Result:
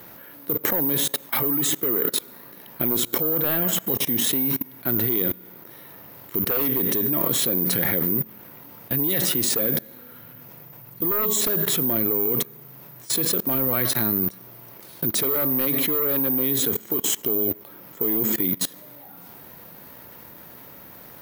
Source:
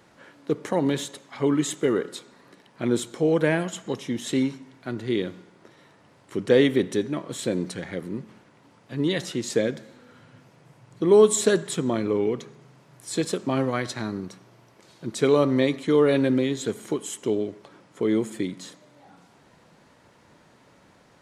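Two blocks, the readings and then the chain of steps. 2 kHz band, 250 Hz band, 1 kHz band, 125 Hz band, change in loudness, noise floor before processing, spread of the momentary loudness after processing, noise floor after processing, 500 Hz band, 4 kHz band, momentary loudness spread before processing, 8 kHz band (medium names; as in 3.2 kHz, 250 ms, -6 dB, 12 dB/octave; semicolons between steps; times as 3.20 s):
-0.5 dB, -3.5 dB, -0.5 dB, -1.0 dB, +3.5 dB, -57 dBFS, 6 LU, -45 dBFS, -6.5 dB, +5.5 dB, 16 LU, +7.0 dB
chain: careless resampling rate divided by 3×, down filtered, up zero stuff; sine folder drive 11 dB, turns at 4.5 dBFS; level held to a coarse grid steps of 22 dB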